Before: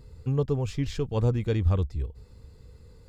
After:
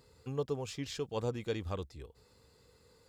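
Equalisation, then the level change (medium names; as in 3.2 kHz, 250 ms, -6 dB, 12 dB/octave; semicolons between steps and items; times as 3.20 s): high-pass 720 Hz 6 dB/octave; peaking EQ 2.2 kHz -2 dB; dynamic bell 1.4 kHz, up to -3 dB, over -53 dBFS, Q 0.72; 0.0 dB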